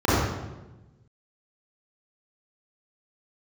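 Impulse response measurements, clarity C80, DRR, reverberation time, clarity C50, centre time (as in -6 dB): -1.0 dB, -12.0 dB, 1.1 s, -4.0 dB, 0.104 s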